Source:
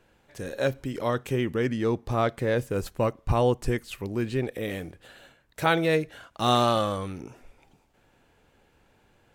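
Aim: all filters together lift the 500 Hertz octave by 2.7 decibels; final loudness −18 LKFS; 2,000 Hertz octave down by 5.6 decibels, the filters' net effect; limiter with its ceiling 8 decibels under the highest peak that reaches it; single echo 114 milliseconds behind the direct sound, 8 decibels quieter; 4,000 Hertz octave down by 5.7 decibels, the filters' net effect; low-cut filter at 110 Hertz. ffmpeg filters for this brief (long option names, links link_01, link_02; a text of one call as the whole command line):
ffmpeg -i in.wav -af "highpass=110,equalizer=frequency=500:width_type=o:gain=3.5,equalizer=frequency=2000:width_type=o:gain=-7,equalizer=frequency=4000:width_type=o:gain=-4.5,alimiter=limit=-15.5dB:level=0:latency=1,aecho=1:1:114:0.398,volume=10dB" out.wav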